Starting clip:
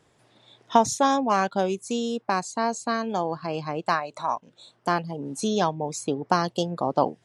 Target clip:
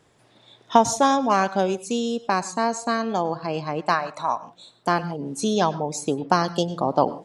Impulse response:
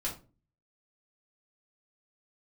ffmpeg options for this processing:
-filter_complex "[0:a]asplit=2[link_01][link_02];[1:a]atrim=start_sample=2205,atrim=end_sample=3969,adelay=97[link_03];[link_02][link_03]afir=irnorm=-1:irlink=0,volume=-19.5dB[link_04];[link_01][link_04]amix=inputs=2:normalize=0,volume=2.5dB"

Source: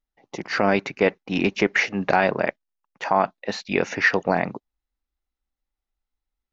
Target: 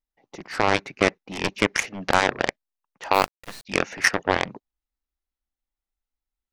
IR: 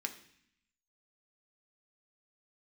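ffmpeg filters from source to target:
-filter_complex "[0:a]aeval=exprs='0.668*(cos(1*acos(clip(val(0)/0.668,-1,1)))-cos(1*PI/2))+0.15*(cos(7*acos(clip(val(0)/0.668,-1,1)))-cos(7*PI/2))':channel_layout=same,asplit=3[link_01][link_02][link_03];[link_01]afade=type=out:start_time=3.13:duration=0.02[link_04];[link_02]acrusher=bits=4:dc=4:mix=0:aa=0.000001,afade=type=in:start_time=3.13:duration=0.02,afade=type=out:start_time=3.64:duration=0.02[link_05];[link_03]afade=type=in:start_time=3.64:duration=0.02[link_06];[link_04][link_05][link_06]amix=inputs=3:normalize=0"

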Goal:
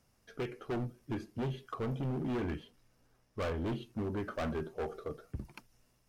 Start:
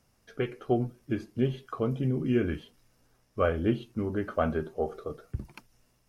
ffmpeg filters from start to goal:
ffmpeg -i in.wav -filter_complex "[0:a]asettb=1/sr,asplit=3[link_01][link_02][link_03];[link_01]atrim=end=2.344[link_04];[link_02]atrim=start=2.34:end=3.66,asetpts=PTS-STARTPTS,afade=type=in:duration=0.004:curve=qsin,afade=type=out:start_time=1.316:duration=0.004:curve=qsin,highshelf=frequency=4600:gain=-4.5[link_05];[link_03]atrim=start=3.656[link_06];[link_04][link_05]acrossfade=duration=0.004:curve1=hsin:curve2=qsin[link_07];[link_07][link_06]acrossfade=duration=0.004:curve1=qsin:curve2=hsin,volume=29dB,asoftclip=hard,volume=-29dB,volume=-3dB" out.wav

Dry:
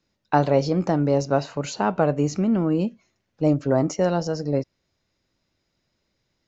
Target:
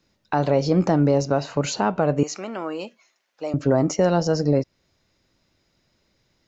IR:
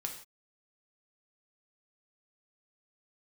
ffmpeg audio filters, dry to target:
-filter_complex "[0:a]alimiter=limit=-15dB:level=0:latency=1:release=273,asettb=1/sr,asplit=3[link_01][link_02][link_03];[link_01]atrim=end=2.234[link_04];[link_02]atrim=start=2.23:end=3.54,asetpts=PTS-STARTPTS,afade=type=in:duration=0.004:curve=qsin,afade=type=out:start_time=1.306:duration=0.004:curve=qsin,highpass=740[link_05];[link_03]atrim=start=3.536[link_06];[link_04][link_05]acrossfade=duration=0.004:curve1=hsin:curve2=qsin[link_07];[link_07][link_06]acrossfade=duration=0.004:curve1=qsin:curve2=hsin,volume=6.5dB"

